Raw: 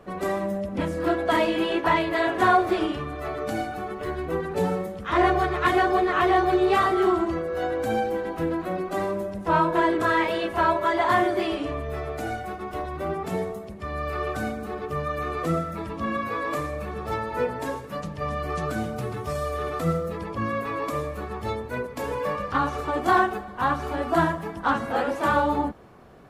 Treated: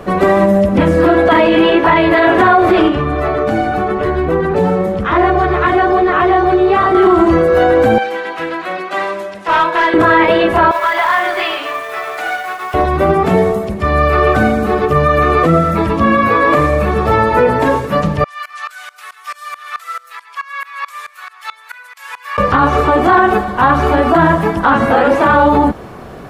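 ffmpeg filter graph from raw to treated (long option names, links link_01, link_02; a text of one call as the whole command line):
ffmpeg -i in.wav -filter_complex "[0:a]asettb=1/sr,asplit=3[link_01][link_02][link_03];[link_01]atrim=end=2.884[link_04];[link_02]atrim=start=2.88:end=6.95,asetpts=PTS-STARTPTS,afade=type=in:duration=0.004:curve=qsin,afade=type=out:start_time=4.066:duration=0.004:curve=qsin,acompressor=threshold=-30dB:ratio=2.5:attack=3.2:release=140:knee=1:detection=peak,lowpass=frequency=2400:poles=1[link_05];[link_03]atrim=start=6.946[link_06];[link_04][link_05]acrossfade=duration=0.004:curve1=hsin:curve2=qsin[link_07];[link_07][link_06]acrossfade=duration=0.004:curve1=qsin:curve2=hsin,asettb=1/sr,asplit=3[link_08][link_09][link_10];[link_08]atrim=end=7.984[link_11];[link_09]atrim=start=7.98:end=9.94,asetpts=PTS-STARTPTS,afade=type=in:duration=0.004:curve=qsin,afade=type=out:start_time=1.956:duration=0.004:curve=qsin,bandpass=frequency=2800:width_type=q:width=0.78,asoftclip=type=hard:threshold=-26dB[link_12];[link_10]atrim=start=9.936[link_13];[link_11][link_12]acrossfade=duration=0.004:curve1=hsin:curve2=qsin[link_14];[link_14][link_13]acrossfade=duration=0.004:curve1=qsin:curve2=hsin,asettb=1/sr,asplit=3[link_15][link_16][link_17];[link_15]atrim=end=10.714[link_18];[link_16]atrim=start=10.71:end=12.74,asetpts=PTS-STARTPTS,afade=type=in:duration=0.004:curve=qsin,afade=type=out:start_time=2.026:duration=0.004:curve=qsin,highpass=1100,acompressor=threshold=-29dB:ratio=3:attack=3.2:release=140:knee=1:detection=peak,acrusher=bits=3:mode=log:mix=0:aa=0.000001[link_19];[link_17]atrim=start=12.736[link_20];[link_18][link_19]acrossfade=duration=0.004:curve1=hsin:curve2=qsin[link_21];[link_21][link_20]acrossfade=duration=0.004:curve1=qsin:curve2=hsin,asettb=1/sr,asplit=3[link_22][link_23][link_24];[link_22]atrim=end=18.244[link_25];[link_23]atrim=start=18.24:end=22.38,asetpts=PTS-STARTPTS,afade=type=in:duration=0.004:curve=qsin,afade=type=out:start_time=4.136:duration=0.004:curve=qsin,highpass=frequency=1300:width=0.5412,highpass=frequency=1300:width=1.3066,aeval=exprs='val(0)*pow(10,-23*if(lt(mod(-4.6*n/s,1),2*abs(-4.6)/1000),1-mod(-4.6*n/s,1)/(2*abs(-4.6)/1000),(mod(-4.6*n/s,1)-2*abs(-4.6)/1000)/(1-2*abs(-4.6)/1000))/20)':channel_layout=same[link_26];[link_24]atrim=start=22.376[link_27];[link_25][link_26]acrossfade=duration=0.004:curve1=hsin:curve2=qsin[link_28];[link_28][link_27]acrossfade=duration=0.004:curve1=qsin:curve2=hsin,acrossover=split=3500[link_29][link_30];[link_30]acompressor=threshold=-58dB:ratio=4:attack=1:release=60[link_31];[link_29][link_31]amix=inputs=2:normalize=0,alimiter=level_in=19.5dB:limit=-1dB:release=50:level=0:latency=1,volume=-1dB" out.wav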